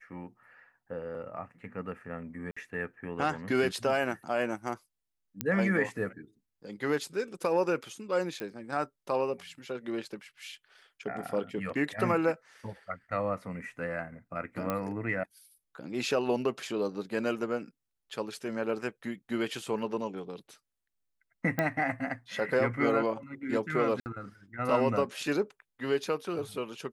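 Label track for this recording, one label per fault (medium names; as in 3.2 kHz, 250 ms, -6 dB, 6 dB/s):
2.510000	2.560000	dropout 55 ms
5.410000	5.410000	pop -13 dBFS
8.400000	8.400000	pop -22 dBFS
14.700000	14.700000	pop -17 dBFS
21.590000	21.590000	pop -15 dBFS
24.000000	24.060000	dropout 59 ms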